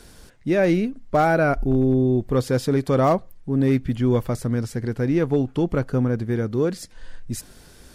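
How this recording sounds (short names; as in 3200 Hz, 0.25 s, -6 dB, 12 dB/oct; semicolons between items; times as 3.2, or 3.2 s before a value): noise floor -48 dBFS; spectral tilt -6.0 dB/oct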